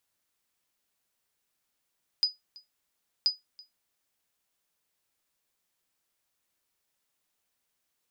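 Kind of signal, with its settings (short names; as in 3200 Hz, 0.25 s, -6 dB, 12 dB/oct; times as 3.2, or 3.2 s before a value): sonar ping 4960 Hz, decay 0.17 s, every 1.03 s, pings 2, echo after 0.33 s, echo -24.5 dB -16 dBFS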